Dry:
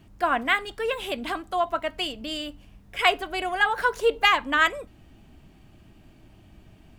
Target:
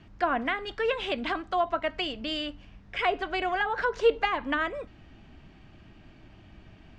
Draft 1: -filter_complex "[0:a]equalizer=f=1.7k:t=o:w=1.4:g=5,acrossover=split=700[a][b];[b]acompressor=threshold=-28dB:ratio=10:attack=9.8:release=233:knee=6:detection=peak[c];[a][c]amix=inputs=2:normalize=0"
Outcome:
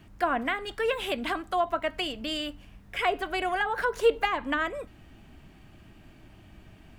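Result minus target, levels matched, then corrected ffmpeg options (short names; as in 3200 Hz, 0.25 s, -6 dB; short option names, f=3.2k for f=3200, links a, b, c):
8000 Hz band +9.0 dB
-filter_complex "[0:a]lowpass=f=5.9k:w=0.5412,lowpass=f=5.9k:w=1.3066,equalizer=f=1.7k:t=o:w=1.4:g=5,acrossover=split=700[a][b];[b]acompressor=threshold=-28dB:ratio=10:attack=9.8:release=233:knee=6:detection=peak[c];[a][c]amix=inputs=2:normalize=0"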